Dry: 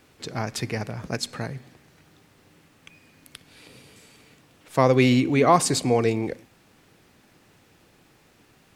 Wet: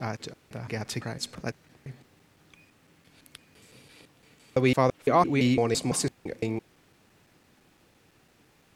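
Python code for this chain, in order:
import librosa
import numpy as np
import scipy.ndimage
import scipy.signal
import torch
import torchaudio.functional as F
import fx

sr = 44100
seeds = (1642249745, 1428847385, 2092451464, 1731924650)

y = fx.block_reorder(x, sr, ms=169.0, group=3)
y = F.gain(torch.from_numpy(y), -4.0).numpy()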